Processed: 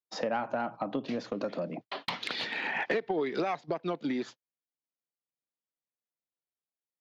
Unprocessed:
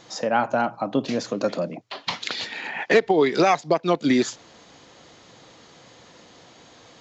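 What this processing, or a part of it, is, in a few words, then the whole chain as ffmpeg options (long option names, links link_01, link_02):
AM radio: -af "highpass=140,lowpass=4000,lowpass=6700,lowshelf=frequency=250:gain=2.5,acompressor=threshold=-27dB:ratio=6,asoftclip=type=tanh:threshold=-18.5dB,tremolo=f=0.35:d=0.22,agate=range=-56dB:threshold=-42dB:ratio=16:detection=peak"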